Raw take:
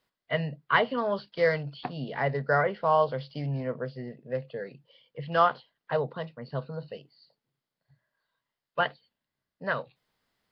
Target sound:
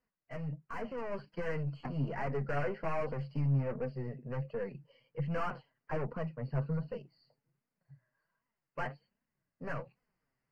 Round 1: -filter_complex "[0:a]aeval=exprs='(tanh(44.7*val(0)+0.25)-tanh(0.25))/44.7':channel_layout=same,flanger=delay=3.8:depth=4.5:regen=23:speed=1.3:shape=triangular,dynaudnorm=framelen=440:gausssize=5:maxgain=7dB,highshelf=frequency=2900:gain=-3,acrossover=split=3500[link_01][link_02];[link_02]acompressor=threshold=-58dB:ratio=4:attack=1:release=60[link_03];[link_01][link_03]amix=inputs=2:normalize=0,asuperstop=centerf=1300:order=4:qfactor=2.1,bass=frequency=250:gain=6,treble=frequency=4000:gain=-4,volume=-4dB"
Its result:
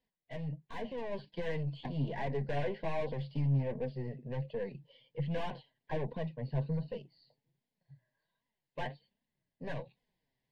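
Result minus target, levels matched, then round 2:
4,000 Hz band +6.5 dB
-filter_complex "[0:a]aeval=exprs='(tanh(44.7*val(0)+0.25)-tanh(0.25))/44.7':channel_layout=same,flanger=delay=3.8:depth=4.5:regen=23:speed=1.3:shape=triangular,dynaudnorm=framelen=440:gausssize=5:maxgain=7dB,highshelf=frequency=2900:gain=-3,acrossover=split=3500[link_01][link_02];[link_02]acompressor=threshold=-58dB:ratio=4:attack=1:release=60[link_03];[link_01][link_03]amix=inputs=2:normalize=0,asuperstop=centerf=3600:order=4:qfactor=2.1,bass=frequency=250:gain=6,treble=frequency=4000:gain=-4,volume=-4dB"

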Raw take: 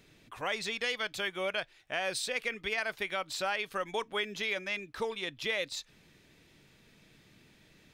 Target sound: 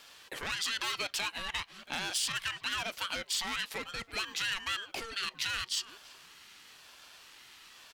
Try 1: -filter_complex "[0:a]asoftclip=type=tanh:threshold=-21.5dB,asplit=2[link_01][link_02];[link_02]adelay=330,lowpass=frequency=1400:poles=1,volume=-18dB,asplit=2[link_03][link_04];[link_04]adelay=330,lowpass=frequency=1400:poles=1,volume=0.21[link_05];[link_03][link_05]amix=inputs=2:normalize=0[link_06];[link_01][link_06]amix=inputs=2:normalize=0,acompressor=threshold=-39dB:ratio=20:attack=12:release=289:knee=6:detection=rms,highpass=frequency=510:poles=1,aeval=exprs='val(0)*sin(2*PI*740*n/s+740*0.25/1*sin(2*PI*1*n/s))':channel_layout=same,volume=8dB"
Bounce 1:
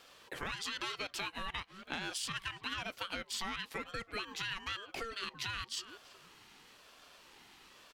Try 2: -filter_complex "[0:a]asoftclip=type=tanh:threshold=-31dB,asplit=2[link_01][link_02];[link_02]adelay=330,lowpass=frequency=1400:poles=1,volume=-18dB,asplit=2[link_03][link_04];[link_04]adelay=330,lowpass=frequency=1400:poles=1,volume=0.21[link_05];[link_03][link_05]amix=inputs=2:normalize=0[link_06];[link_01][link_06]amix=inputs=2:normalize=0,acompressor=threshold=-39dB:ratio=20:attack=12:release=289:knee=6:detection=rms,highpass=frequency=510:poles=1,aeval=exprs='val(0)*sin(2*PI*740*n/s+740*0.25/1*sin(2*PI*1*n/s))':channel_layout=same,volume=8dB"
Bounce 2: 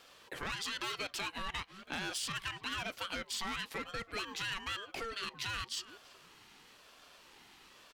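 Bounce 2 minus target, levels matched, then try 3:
1,000 Hz band +3.0 dB
-filter_complex "[0:a]asoftclip=type=tanh:threshold=-31dB,asplit=2[link_01][link_02];[link_02]adelay=330,lowpass=frequency=1400:poles=1,volume=-18dB,asplit=2[link_03][link_04];[link_04]adelay=330,lowpass=frequency=1400:poles=1,volume=0.21[link_05];[link_03][link_05]amix=inputs=2:normalize=0[link_06];[link_01][link_06]amix=inputs=2:normalize=0,acompressor=threshold=-39dB:ratio=20:attack=12:release=289:knee=6:detection=rms,highpass=frequency=510:poles=1,tiltshelf=frequency=910:gain=-7,aeval=exprs='val(0)*sin(2*PI*740*n/s+740*0.25/1*sin(2*PI*1*n/s))':channel_layout=same,volume=8dB"

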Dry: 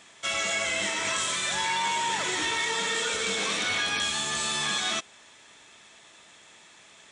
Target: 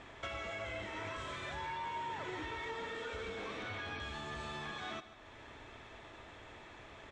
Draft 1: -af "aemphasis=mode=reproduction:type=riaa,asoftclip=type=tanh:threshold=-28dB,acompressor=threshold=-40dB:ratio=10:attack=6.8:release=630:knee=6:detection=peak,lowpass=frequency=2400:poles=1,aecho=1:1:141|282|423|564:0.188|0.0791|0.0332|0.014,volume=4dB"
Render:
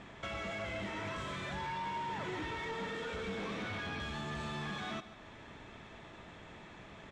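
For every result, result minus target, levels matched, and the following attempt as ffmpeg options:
soft clipping: distortion +15 dB; 250 Hz band +3.5 dB
-af "aemphasis=mode=reproduction:type=riaa,asoftclip=type=tanh:threshold=-17.5dB,acompressor=threshold=-40dB:ratio=10:attack=6.8:release=630:knee=6:detection=peak,lowpass=frequency=2400:poles=1,aecho=1:1:141|282|423|564:0.188|0.0791|0.0332|0.014,volume=4dB"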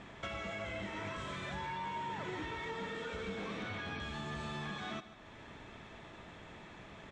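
250 Hz band +4.5 dB
-af "aemphasis=mode=reproduction:type=riaa,asoftclip=type=tanh:threshold=-17.5dB,acompressor=threshold=-40dB:ratio=10:attack=6.8:release=630:knee=6:detection=peak,lowpass=frequency=2400:poles=1,equalizer=frequency=180:width_type=o:width=0.62:gain=-13.5,aecho=1:1:141|282|423|564:0.188|0.0791|0.0332|0.014,volume=4dB"

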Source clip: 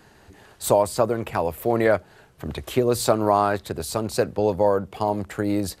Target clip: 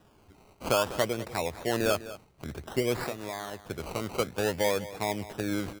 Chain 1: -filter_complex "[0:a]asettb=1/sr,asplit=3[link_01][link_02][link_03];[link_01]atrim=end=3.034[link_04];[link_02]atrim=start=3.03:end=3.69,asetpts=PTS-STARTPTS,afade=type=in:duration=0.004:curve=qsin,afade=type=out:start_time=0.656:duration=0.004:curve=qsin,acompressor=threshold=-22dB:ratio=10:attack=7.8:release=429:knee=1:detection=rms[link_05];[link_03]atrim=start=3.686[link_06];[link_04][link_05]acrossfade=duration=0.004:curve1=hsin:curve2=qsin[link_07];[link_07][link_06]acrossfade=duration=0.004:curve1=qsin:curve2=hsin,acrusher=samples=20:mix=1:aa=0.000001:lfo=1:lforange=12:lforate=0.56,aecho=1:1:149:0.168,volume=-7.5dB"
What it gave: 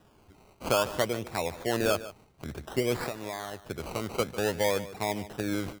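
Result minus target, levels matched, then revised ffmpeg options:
echo 52 ms early
-filter_complex "[0:a]asettb=1/sr,asplit=3[link_01][link_02][link_03];[link_01]atrim=end=3.034[link_04];[link_02]atrim=start=3.03:end=3.69,asetpts=PTS-STARTPTS,afade=type=in:duration=0.004:curve=qsin,afade=type=out:start_time=0.656:duration=0.004:curve=qsin,acompressor=threshold=-22dB:ratio=10:attack=7.8:release=429:knee=1:detection=rms[link_05];[link_03]atrim=start=3.686[link_06];[link_04][link_05]acrossfade=duration=0.004:curve1=hsin:curve2=qsin[link_07];[link_07][link_06]acrossfade=duration=0.004:curve1=qsin:curve2=hsin,acrusher=samples=20:mix=1:aa=0.000001:lfo=1:lforange=12:lforate=0.56,aecho=1:1:201:0.168,volume=-7.5dB"

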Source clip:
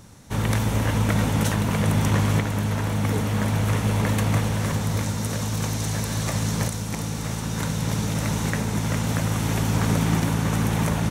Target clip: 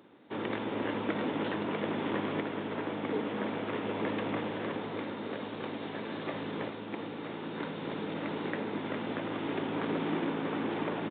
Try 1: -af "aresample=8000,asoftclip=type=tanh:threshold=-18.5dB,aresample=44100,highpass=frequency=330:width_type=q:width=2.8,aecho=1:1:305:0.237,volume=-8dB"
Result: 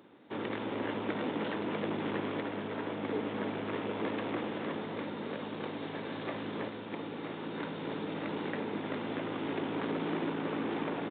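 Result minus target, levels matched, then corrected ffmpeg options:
soft clipping: distortion +11 dB; echo 110 ms early
-af "aresample=8000,asoftclip=type=tanh:threshold=-11dB,aresample=44100,highpass=frequency=330:width_type=q:width=2.8,aecho=1:1:415:0.237,volume=-8dB"

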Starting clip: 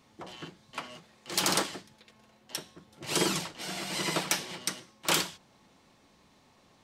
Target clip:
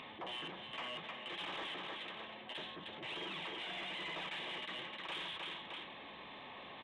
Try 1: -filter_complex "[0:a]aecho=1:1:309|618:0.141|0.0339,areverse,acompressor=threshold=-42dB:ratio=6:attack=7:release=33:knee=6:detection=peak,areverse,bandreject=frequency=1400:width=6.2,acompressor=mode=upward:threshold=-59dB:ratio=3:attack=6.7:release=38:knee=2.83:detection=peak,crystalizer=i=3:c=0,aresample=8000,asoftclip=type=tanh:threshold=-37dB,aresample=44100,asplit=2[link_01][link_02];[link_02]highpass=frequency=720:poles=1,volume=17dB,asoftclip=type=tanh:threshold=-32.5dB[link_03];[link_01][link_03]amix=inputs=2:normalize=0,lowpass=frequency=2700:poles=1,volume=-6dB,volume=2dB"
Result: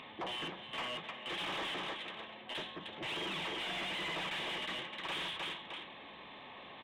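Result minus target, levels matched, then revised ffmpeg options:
downward compressor: peak gain reduction −10 dB
-filter_complex "[0:a]aecho=1:1:309|618:0.141|0.0339,areverse,acompressor=threshold=-54dB:ratio=6:attack=7:release=33:knee=6:detection=peak,areverse,bandreject=frequency=1400:width=6.2,acompressor=mode=upward:threshold=-59dB:ratio=3:attack=6.7:release=38:knee=2.83:detection=peak,crystalizer=i=3:c=0,aresample=8000,asoftclip=type=tanh:threshold=-37dB,aresample=44100,asplit=2[link_01][link_02];[link_02]highpass=frequency=720:poles=1,volume=17dB,asoftclip=type=tanh:threshold=-32.5dB[link_03];[link_01][link_03]amix=inputs=2:normalize=0,lowpass=frequency=2700:poles=1,volume=-6dB,volume=2dB"

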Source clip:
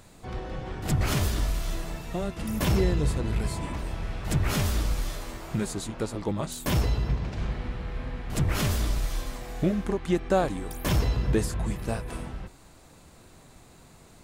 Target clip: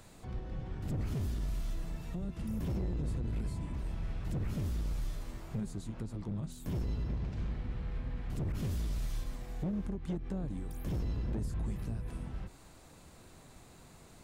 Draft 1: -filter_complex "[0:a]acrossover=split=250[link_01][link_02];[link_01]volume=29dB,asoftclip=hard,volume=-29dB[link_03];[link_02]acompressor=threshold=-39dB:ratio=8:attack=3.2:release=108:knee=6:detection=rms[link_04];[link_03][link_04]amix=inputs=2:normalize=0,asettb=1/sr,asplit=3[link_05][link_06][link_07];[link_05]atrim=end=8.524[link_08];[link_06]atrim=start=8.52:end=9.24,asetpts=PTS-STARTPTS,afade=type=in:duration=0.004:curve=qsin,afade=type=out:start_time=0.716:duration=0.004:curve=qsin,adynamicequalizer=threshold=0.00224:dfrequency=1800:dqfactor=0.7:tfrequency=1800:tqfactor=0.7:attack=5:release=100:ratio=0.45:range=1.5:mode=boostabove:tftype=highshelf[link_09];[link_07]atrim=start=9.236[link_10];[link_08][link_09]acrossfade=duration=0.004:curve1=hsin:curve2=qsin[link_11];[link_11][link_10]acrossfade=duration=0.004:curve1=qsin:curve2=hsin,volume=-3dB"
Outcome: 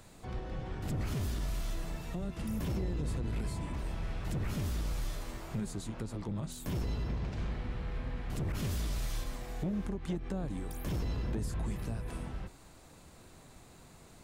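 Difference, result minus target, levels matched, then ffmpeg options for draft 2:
downward compressor: peak gain reduction −7 dB
-filter_complex "[0:a]acrossover=split=250[link_01][link_02];[link_01]volume=29dB,asoftclip=hard,volume=-29dB[link_03];[link_02]acompressor=threshold=-47dB:ratio=8:attack=3.2:release=108:knee=6:detection=rms[link_04];[link_03][link_04]amix=inputs=2:normalize=0,asettb=1/sr,asplit=3[link_05][link_06][link_07];[link_05]atrim=end=8.524[link_08];[link_06]atrim=start=8.52:end=9.24,asetpts=PTS-STARTPTS,afade=type=in:duration=0.004:curve=qsin,afade=type=out:start_time=0.716:duration=0.004:curve=qsin,adynamicequalizer=threshold=0.00224:dfrequency=1800:dqfactor=0.7:tfrequency=1800:tqfactor=0.7:attack=5:release=100:ratio=0.45:range=1.5:mode=boostabove:tftype=highshelf[link_09];[link_07]atrim=start=9.236[link_10];[link_08][link_09]acrossfade=duration=0.004:curve1=hsin:curve2=qsin[link_11];[link_11][link_10]acrossfade=duration=0.004:curve1=qsin:curve2=hsin,volume=-3dB"

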